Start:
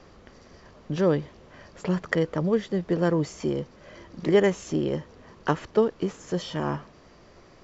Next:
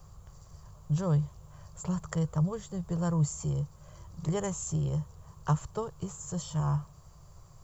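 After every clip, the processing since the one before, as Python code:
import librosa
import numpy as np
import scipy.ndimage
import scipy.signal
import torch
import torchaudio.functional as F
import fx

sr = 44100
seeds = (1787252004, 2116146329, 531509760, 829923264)

y = fx.curve_eq(x, sr, hz=(150.0, 240.0, 1100.0, 1900.0, 5700.0, 8700.0), db=(0, -27, -9, -24, -10, 15))
y = y * 10.0 ** (5.5 / 20.0)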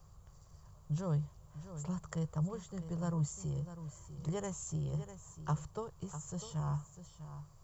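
y = x + 10.0 ** (-12.0 / 20.0) * np.pad(x, (int(649 * sr / 1000.0), 0))[:len(x)]
y = y * 10.0 ** (-7.0 / 20.0)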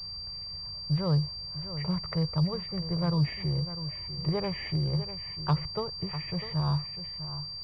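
y = fx.pwm(x, sr, carrier_hz=4700.0)
y = y * 10.0 ** (8.0 / 20.0)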